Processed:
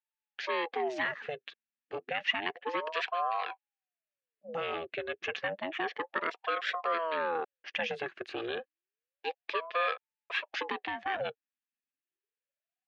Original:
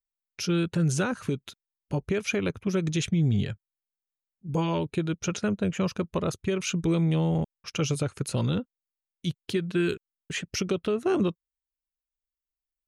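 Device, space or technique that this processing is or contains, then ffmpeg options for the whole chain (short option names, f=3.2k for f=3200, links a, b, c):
voice changer toy: -af "aeval=exprs='val(0)*sin(2*PI*560*n/s+560*0.6/0.3*sin(2*PI*0.3*n/s))':c=same,highpass=460,equalizer=f=660:t=q:w=4:g=-6,equalizer=f=970:t=q:w=4:g=-9,equalizer=f=1.7k:t=q:w=4:g=9,equalizer=f=2.6k:t=q:w=4:g=7,lowpass=f=3.6k:w=0.5412,lowpass=f=3.6k:w=1.3066"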